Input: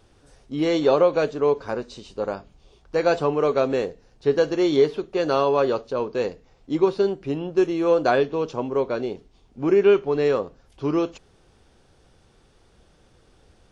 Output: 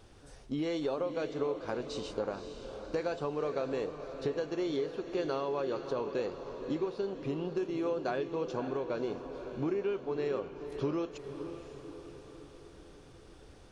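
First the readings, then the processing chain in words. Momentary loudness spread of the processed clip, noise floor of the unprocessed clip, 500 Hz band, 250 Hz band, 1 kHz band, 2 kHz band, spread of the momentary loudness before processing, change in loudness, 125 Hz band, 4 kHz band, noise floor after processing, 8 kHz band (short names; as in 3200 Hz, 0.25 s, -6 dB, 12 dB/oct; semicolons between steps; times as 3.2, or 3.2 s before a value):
14 LU, -58 dBFS, -13.0 dB, -10.5 dB, -13.0 dB, -12.5 dB, 12 LU, -13.0 dB, -9.0 dB, -11.0 dB, -54 dBFS, n/a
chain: compressor 6:1, threshold -32 dBFS, peak gain reduction 18 dB; diffused feedback echo 0.538 s, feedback 56%, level -9 dB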